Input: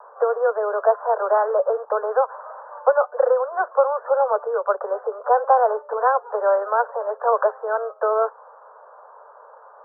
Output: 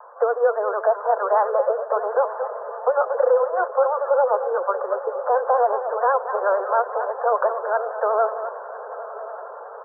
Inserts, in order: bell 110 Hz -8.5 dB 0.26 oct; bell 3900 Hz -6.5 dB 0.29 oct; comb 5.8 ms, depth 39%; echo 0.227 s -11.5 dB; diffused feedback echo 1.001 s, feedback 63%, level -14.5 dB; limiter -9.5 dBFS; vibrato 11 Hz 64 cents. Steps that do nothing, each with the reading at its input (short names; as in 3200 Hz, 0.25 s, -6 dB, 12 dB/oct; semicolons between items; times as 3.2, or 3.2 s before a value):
bell 110 Hz: input band starts at 360 Hz; bell 3900 Hz: input band ends at 1600 Hz